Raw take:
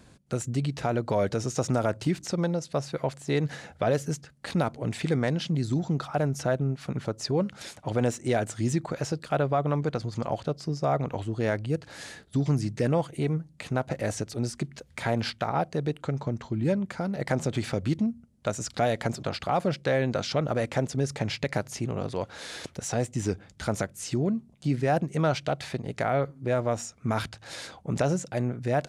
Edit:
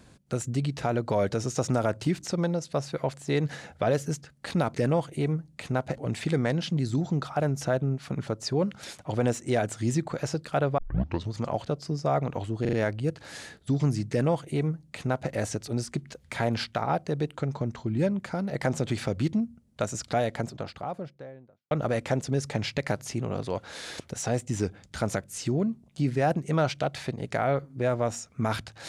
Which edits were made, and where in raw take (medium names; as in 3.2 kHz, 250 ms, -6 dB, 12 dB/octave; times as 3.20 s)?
9.56 s: tape start 0.54 s
11.39 s: stutter 0.04 s, 4 plays
12.76–13.98 s: copy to 4.75 s
18.51–20.37 s: studio fade out